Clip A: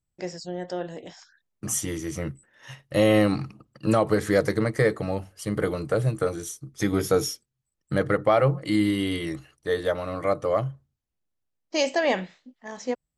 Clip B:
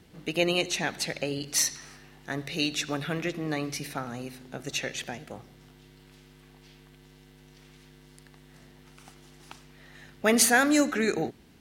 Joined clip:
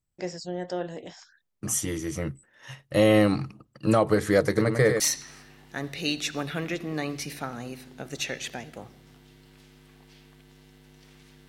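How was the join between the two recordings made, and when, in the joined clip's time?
clip A
4.46–5 echo 0.1 s -6 dB
5 switch to clip B from 1.54 s

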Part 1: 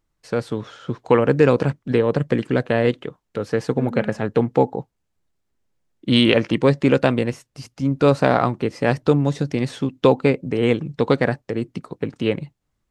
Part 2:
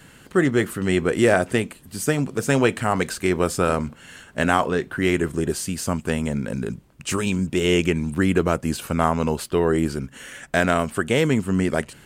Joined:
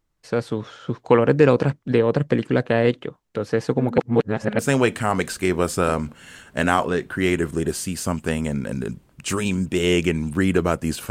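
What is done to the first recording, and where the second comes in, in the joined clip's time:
part 1
3.98–4.59 reverse
4.59 switch to part 2 from 2.4 s

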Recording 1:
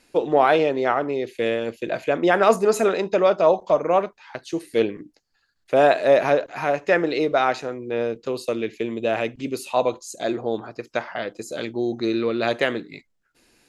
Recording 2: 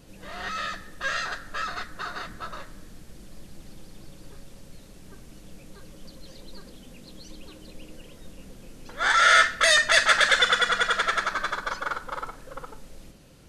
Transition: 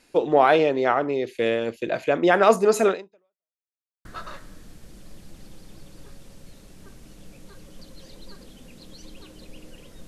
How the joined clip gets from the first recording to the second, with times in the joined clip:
recording 1
2.91–3.54 fade out exponential
3.54–4.05 mute
4.05 switch to recording 2 from 2.31 s

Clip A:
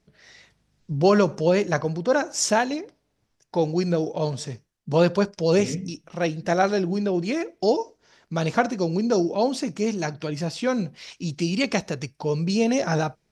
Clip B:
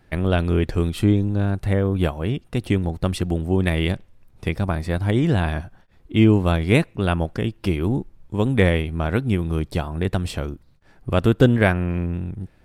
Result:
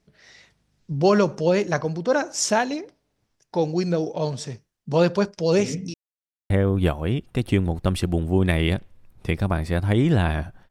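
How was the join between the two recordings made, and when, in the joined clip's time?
clip A
5.94–6.5 mute
6.5 switch to clip B from 1.68 s

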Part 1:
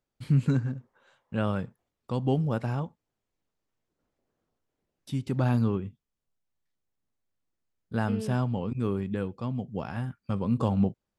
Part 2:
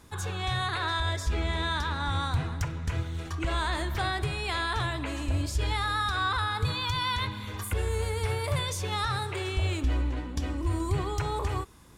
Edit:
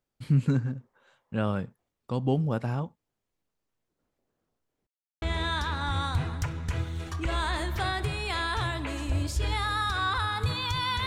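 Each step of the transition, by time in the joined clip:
part 1
4.87–5.22 mute
5.22 switch to part 2 from 1.41 s

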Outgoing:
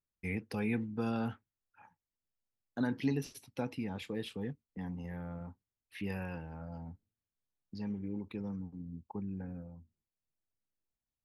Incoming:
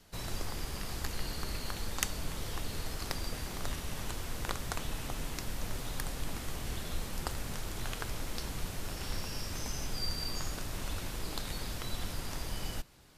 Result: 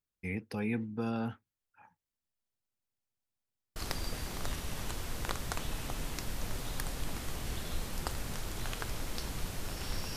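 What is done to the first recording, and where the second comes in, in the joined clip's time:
outgoing
2.43 stutter in place 0.19 s, 7 plays
3.76 switch to incoming from 2.96 s

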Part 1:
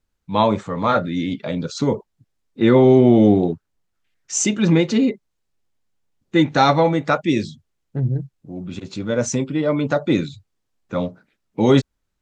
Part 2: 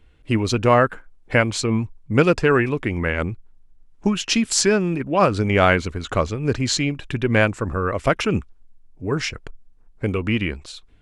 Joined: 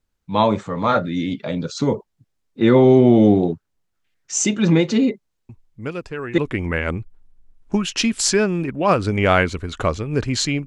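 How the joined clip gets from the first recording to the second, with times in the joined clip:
part 1
5.49 add part 2 from 1.81 s 0.89 s -12.5 dB
6.38 switch to part 2 from 2.7 s

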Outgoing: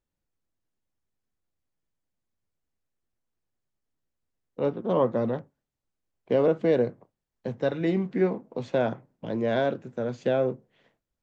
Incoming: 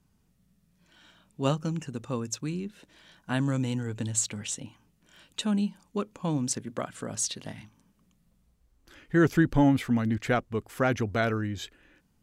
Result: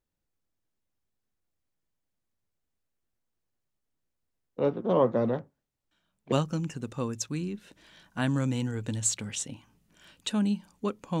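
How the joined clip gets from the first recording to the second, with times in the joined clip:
outgoing
5.91 add incoming from 1.03 s 0.41 s -17 dB
6.32 switch to incoming from 1.44 s

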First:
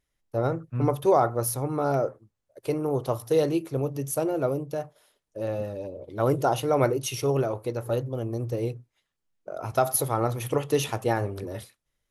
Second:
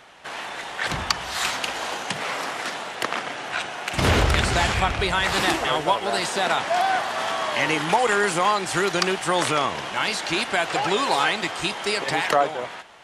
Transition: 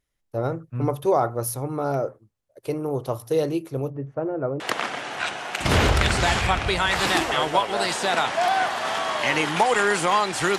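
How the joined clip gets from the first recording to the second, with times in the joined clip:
first
3.9–4.6 Chebyshev low-pass 1700 Hz, order 3
4.6 switch to second from 2.93 s

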